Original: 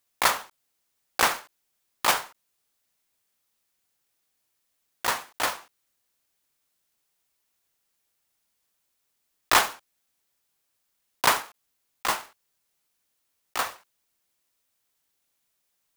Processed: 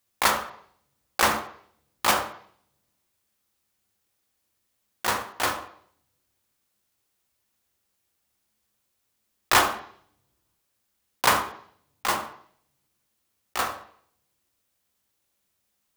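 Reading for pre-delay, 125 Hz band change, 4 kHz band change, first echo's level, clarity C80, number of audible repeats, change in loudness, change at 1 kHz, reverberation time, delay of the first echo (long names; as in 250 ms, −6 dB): 3 ms, +6.0 dB, +0.5 dB, no echo audible, 12.5 dB, no echo audible, +1.0 dB, +1.5 dB, 0.60 s, no echo audible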